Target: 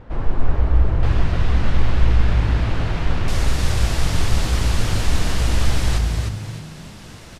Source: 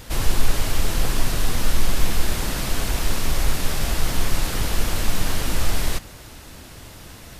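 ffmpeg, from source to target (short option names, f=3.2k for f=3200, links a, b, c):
-filter_complex "[0:a]asetnsamples=n=441:p=0,asendcmd='1.03 lowpass f 2600;3.28 lowpass f 8100',lowpass=1.2k,asplit=5[a][b][c][d][e];[b]adelay=305,afreqshift=50,volume=-4.5dB[f];[c]adelay=610,afreqshift=100,volume=-13.6dB[g];[d]adelay=915,afreqshift=150,volume=-22.7dB[h];[e]adelay=1220,afreqshift=200,volume=-31.9dB[i];[a][f][g][h][i]amix=inputs=5:normalize=0"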